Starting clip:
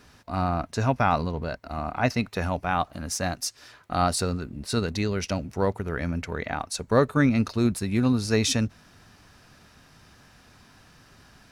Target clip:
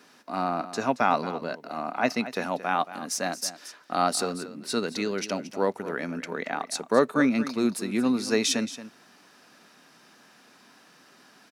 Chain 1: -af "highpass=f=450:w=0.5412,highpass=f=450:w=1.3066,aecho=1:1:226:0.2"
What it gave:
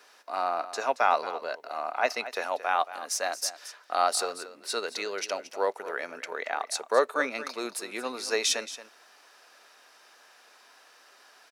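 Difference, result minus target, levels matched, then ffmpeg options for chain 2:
250 Hz band -14.5 dB
-af "highpass=f=210:w=0.5412,highpass=f=210:w=1.3066,aecho=1:1:226:0.2"

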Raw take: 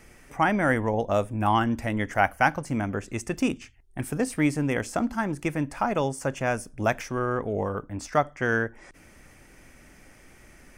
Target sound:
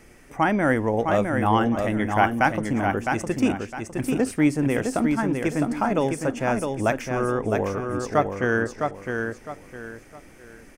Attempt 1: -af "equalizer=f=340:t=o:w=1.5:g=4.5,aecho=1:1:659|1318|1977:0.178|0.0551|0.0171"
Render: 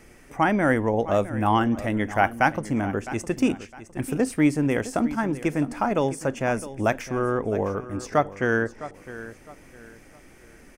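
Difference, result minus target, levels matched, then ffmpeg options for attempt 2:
echo-to-direct -10 dB
-af "equalizer=f=340:t=o:w=1.5:g=4.5,aecho=1:1:659|1318|1977|2636:0.562|0.174|0.054|0.0168"

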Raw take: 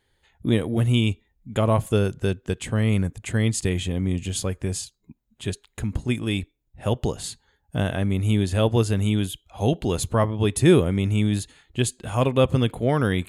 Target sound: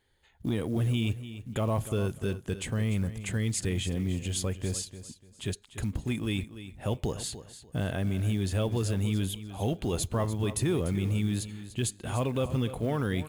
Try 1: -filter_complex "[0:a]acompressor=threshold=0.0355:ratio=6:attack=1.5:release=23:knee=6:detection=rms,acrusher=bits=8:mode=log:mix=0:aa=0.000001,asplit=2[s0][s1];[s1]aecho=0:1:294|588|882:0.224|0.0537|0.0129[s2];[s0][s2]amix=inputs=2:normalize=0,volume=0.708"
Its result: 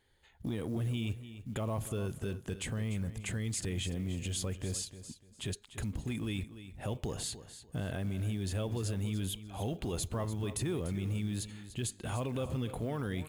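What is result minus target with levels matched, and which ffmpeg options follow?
compression: peak gain reduction +7 dB
-filter_complex "[0:a]acompressor=threshold=0.0944:ratio=6:attack=1.5:release=23:knee=6:detection=rms,acrusher=bits=8:mode=log:mix=0:aa=0.000001,asplit=2[s0][s1];[s1]aecho=0:1:294|588|882:0.224|0.0537|0.0129[s2];[s0][s2]amix=inputs=2:normalize=0,volume=0.708"

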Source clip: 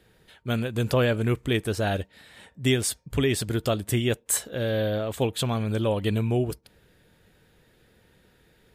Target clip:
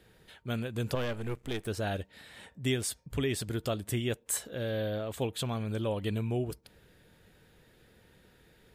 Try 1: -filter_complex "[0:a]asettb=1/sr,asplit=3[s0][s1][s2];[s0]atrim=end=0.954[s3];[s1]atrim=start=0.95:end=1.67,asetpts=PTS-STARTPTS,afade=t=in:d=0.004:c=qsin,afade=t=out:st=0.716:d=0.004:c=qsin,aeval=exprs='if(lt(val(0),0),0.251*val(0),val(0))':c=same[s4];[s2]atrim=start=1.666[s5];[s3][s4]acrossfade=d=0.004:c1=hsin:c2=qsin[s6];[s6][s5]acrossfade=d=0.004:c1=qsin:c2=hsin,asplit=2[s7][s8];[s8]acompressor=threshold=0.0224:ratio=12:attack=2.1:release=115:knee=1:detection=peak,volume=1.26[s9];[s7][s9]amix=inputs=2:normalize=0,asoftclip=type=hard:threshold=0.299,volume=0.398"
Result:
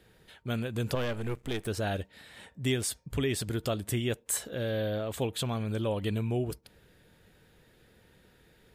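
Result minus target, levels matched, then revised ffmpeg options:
compression: peak gain reduction -10 dB
-filter_complex "[0:a]asettb=1/sr,asplit=3[s0][s1][s2];[s0]atrim=end=0.954[s3];[s1]atrim=start=0.95:end=1.67,asetpts=PTS-STARTPTS,afade=t=in:d=0.004:c=qsin,afade=t=out:st=0.716:d=0.004:c=qsin,aeval=exprs='if(lt(val(0),0),0.251*val(0),val(0))':c=same[s4];[s2]atrim=start=1.666[s5];[s3][s4]acrossfade=d=0.004:c1=hsin:c2=qsin[s6];[s6][s5]acrossfade=d=0.004:c1=qsin:c2=hsin,asplit=2[s7][s8];[s8]acompressor=threshold=0.00631:ratio=12:attack=2.1:release=115:knee=1:detection=peak,volume=1.26[s9];[s7][s9]amix=inputs=2:normalize=0,asoftclip=type=hard:threshold=0.299,volume=0.398"

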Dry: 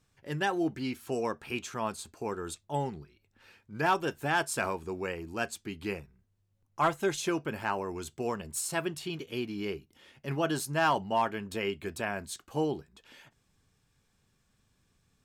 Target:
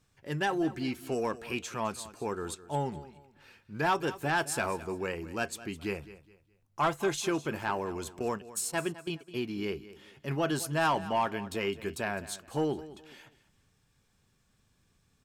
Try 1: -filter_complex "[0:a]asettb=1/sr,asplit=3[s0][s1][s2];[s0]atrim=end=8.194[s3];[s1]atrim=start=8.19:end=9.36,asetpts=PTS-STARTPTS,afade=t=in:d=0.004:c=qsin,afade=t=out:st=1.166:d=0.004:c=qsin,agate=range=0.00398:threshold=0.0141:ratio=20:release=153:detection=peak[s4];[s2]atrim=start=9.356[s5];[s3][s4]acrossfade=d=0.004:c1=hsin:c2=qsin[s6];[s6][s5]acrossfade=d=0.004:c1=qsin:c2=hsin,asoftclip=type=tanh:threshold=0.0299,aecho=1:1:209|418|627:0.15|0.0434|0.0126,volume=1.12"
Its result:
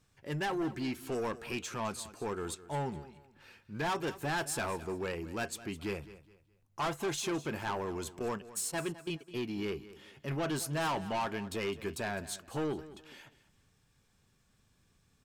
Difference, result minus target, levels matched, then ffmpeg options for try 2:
saturation: distortion +11 dB
-filter_complex "[0:a]asettb=1/sr,asplit=3[s0][s1][s2];[s0]atrim=end=8.194[s3];[s1]atrim=start=8.19:end=9.36,asetpts=PTS-STARTPTS,afade=t=in:d=0.004:c=qsin,afade=t=out:st=1.166:d=0.004:c=qsin,agate=range=0.00398:threshold=0.0141:ratio=20:release=153:detection=peak[s4];[s2]atrim=start=9.356[s5];[s3][s4]acrossfade=d=0.004:c1=hsin:c2=qsin[s6];[s6][s5]acrossfade=d=0.004:c1=qsin:c2=hsin,asoftclip=type=tanh:threshold=0.1,aecho=1:1:209|418|627:0.15|0.0434|0.0126,volume=1.12"

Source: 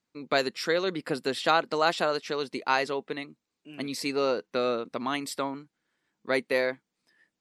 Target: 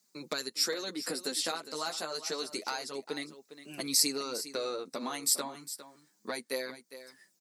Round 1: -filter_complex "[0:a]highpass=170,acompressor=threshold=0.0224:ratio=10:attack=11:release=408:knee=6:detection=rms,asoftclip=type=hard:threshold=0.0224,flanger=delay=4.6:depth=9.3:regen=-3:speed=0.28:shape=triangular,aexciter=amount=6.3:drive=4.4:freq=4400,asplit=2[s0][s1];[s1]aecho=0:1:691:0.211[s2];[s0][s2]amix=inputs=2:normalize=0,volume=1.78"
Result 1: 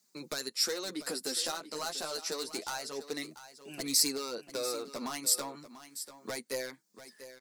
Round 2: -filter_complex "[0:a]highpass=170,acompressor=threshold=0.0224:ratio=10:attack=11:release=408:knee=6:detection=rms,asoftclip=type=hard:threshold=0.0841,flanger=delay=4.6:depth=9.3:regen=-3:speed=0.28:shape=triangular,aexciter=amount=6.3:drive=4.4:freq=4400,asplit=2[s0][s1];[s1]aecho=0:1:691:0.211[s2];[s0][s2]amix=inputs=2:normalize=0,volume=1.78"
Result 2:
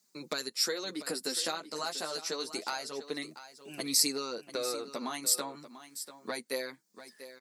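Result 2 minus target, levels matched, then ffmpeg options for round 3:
echo 284 ms late
-filter_complex "[0:a]highpass=170,acompressor=threshold=0.0224:ratio=10:attack=11:release=408:knee=6:detection=rms,asoftclip=type=hard:threshold=0.0841,flanger=delay=4.6:depth=9.3:regen=-3:speed=0.28:shape=triangular,aexciter=amount=6.3:drive=4.4:freq=4400,asplit=2[s0][s1];[s1]aecho=0:1:407:0.211[s2];[s0][s2]amix=inputs=2:normalize=0,volume=1.78"

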